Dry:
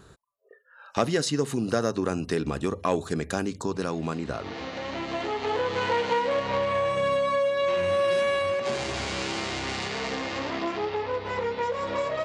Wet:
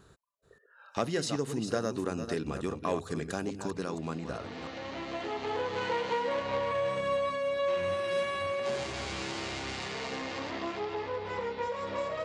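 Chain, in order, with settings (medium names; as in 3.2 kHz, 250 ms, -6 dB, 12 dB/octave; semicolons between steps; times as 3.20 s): chunks repeated in reverse 292 ms, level -8 dB; trim -6.5 dB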